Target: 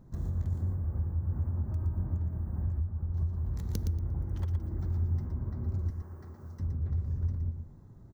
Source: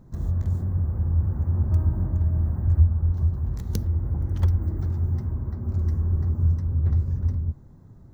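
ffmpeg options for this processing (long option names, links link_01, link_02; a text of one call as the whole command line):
ffmpeg -i in.wav -filter_complex "[0:a]asettb=1/sr,asplit=3[link_01][link_02][link_03];[link_01]atrim=end=5.904[link_04];[link_02]atrim=start=5.9:end=6.6,asetpts=PTS-STARTPTS,afade=type=in:duration=0.004:curve=qsin,afade=type=out:start_time=0.696:duration=0.004:curve=qsin,highpass=frequency=920:poles=1[link_05];[link_03]atrim=start=6.596[link_06];[link_04][link_05]acrossfade=duration=0.004:curve1=hsin:curve2=qsin[link_07];[link_07][link_06]acrossfade=duration=0.004:curve1=qsin:curve2=hsin,acompressor=threshold=-24dB:ratio=6,aecho=1:1:117|234|351:0.447|0.0804|0.0145,volume=-4.5dB" out.wav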